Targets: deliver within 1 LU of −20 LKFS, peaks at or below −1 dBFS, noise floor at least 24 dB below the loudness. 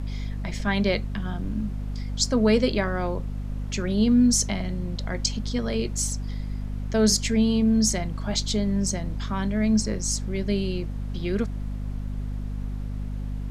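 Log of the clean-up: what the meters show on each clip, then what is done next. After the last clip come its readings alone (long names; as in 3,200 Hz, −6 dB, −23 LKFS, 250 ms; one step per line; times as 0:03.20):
mains hum 50 Hz; hum harmonics up to 250 Hz; level of the hum −28 dBFS; background noise floor −32 dBFS; target noise floor −50 dBFS; integrated loudness −25.5 LKFS; sample peak −8.5 dBFS; target loudness −20.0 LKFS
→ mains-hum notches 50/100/150/200/250 Hz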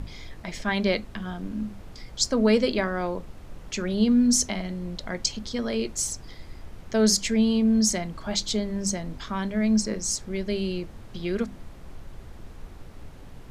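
mains hum none found; background noise floor −44 dBFS; target noise floor −50 dBFS
→ noise reduction from a noise print 6 dB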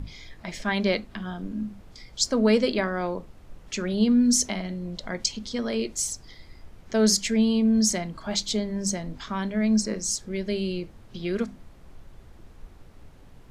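background noise floor −50 dBFS; integrated loudness −25.5 LKFS; sample peak −8.5 dBFS; target loudness −20.0 LKFS
→ level +5.5 dB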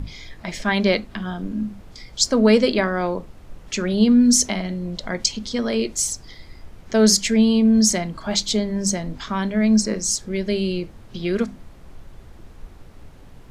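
integrated loudness −20.0 LKFS; sample peak −3.0 dBFS; background noise floor −44 dBFS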